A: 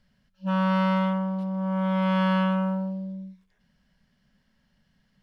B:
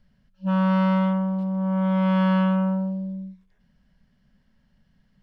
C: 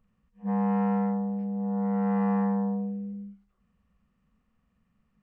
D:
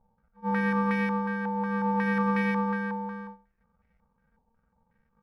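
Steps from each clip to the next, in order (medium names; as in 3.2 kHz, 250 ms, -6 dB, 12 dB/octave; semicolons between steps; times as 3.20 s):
tilt EQ -1.5 dB/octave
frequency axis rescaled in octaves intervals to 80%; pre-echo 78 ms -23 dB; trim -4.5 dB
bit-reversed sample order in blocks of 64 samples; step-sequenced low-pass 5.5 Hz 860–2000 Hz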